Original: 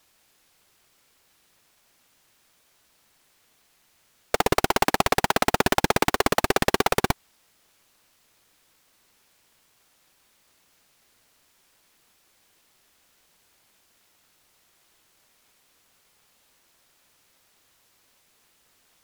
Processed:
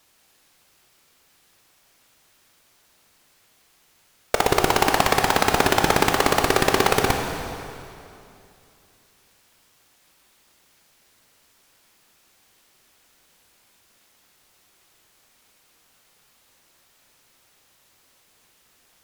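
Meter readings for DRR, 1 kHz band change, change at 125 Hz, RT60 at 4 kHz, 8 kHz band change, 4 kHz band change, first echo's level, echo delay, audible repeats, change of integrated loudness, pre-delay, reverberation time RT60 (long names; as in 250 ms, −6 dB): 3.5 dB, +3.5 dB, +3.0 dB, 2.4 s, +3.5 dB, +3.5 dB, no echo audible, no echo audible, no echo audible, +3.0 dB, 15 ms, 2.7 s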